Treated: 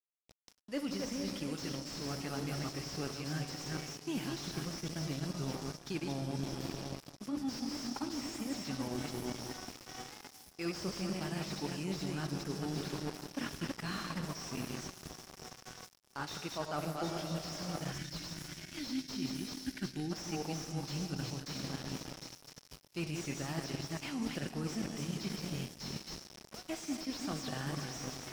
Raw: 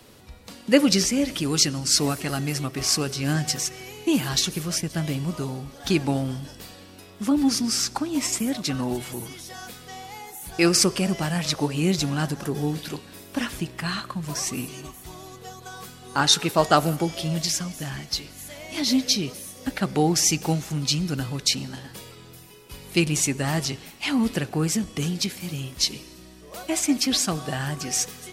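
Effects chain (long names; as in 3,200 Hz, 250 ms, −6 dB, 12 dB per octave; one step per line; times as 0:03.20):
delay that plays each chunk backwards 222 ms, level −5 dB
feedback echo with a long and a short gap by turns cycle 1,001 ms, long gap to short 3 to 1, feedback 49%, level −19.5 dB
on a send at −10.5 dB: convolution reverb RT60 4.3 s, pre-delay 20 ms
on the sum: dead-zone distortion −34.5 dBFS
gain on a spectral selection 0:17.92–0:20.12, 390–1,400 Hz −12 dB
reversed playback
downward compressor 10 to 1, threshold −33 dBFS, peak gain reduction 22 dB
reversed playback
parametric band 5,400 Hz +10.5 dB 0.35 octaves
slew-rate limiting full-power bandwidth 33 Hz
level −1 dB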